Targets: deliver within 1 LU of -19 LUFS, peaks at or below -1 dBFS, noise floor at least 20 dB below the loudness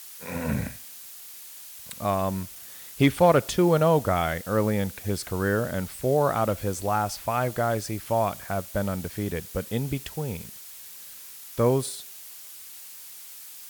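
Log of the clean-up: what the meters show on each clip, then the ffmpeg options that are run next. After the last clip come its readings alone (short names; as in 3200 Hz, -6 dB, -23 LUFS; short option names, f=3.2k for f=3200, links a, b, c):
noise floor -44 dBFS; noise floor target -46 dBFS; loudness -26.0 LUFS; peak -8.5 dBFS; loudness target -19.0 LUFS
-> -af "afftdn=nr=6:nf=-44"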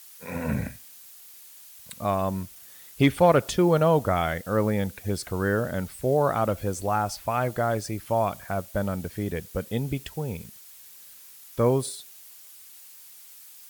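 noise floor -48 dBFS; loudness -26.0 LUFS; peak -8.5 dBFS; loudness target -19.0 LUFS
-> -af "volume=7dB"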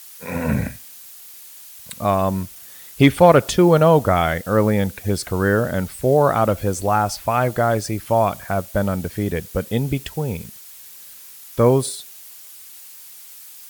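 loudness -19.0 LUFS; peak -1.5 dBFS; noise floor -41 dBFS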